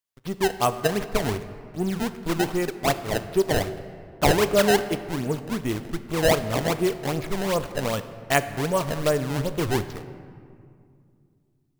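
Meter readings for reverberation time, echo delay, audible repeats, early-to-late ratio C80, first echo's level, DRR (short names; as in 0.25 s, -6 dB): 2.3 s, none, none, 13.5 dB, none, 11.0 dB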